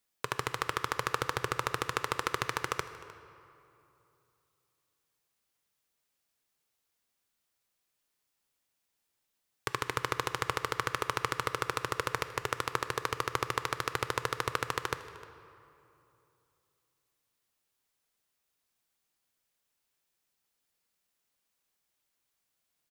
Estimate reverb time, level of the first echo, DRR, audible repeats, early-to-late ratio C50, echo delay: 2.8 s, −20.0 dB, 10.0 dB, 1, 11.0 dB, 306 ms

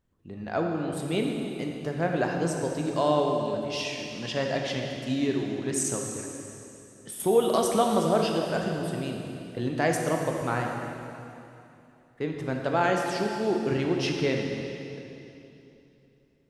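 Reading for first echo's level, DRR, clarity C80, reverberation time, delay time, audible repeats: no echo audible, 1.0 dB, 3.0 dB, 2.9 s, no echo audible, no echo audible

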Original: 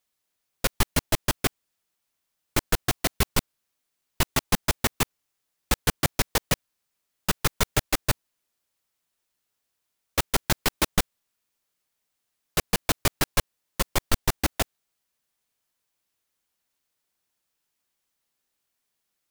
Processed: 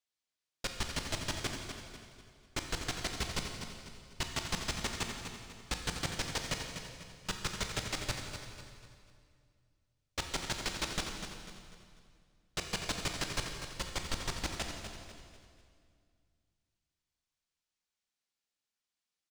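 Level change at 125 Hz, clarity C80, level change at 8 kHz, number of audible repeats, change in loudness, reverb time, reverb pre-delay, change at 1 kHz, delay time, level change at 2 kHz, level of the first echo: −11.5 dB, 4.0 dB, −10.5 dB, 4, −11.0 dB, 2.2 s, 18 ms, −11.0 dB, 247 ms, −9.0 dB, −9.0 dB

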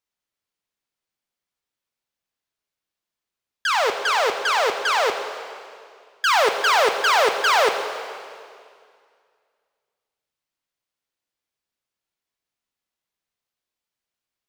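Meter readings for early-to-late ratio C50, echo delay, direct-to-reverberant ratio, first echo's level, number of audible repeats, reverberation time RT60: 7.0 dB, no echo audible, 5.5 dB, no echo audible, no echo audible, 2.2 s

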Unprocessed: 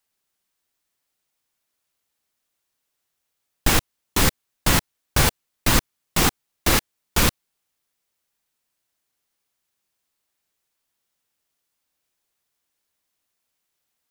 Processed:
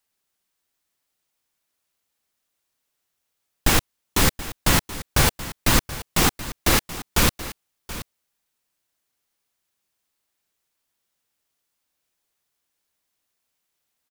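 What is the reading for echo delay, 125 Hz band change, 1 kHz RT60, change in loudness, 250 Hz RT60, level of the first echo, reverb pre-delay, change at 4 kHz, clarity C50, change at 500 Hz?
728 ms, 0.0 dB, no reverb audible, 0.0 dB, no reverb audible, −15.0 dB, no reverb audible, 0.0 dB, no reverb audible, 0.0 dB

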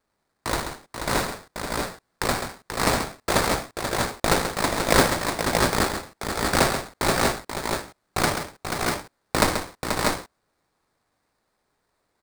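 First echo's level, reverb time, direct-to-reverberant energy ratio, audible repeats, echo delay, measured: −8.5 dB, no reverb audible, no reverb audible, 3, 134 ms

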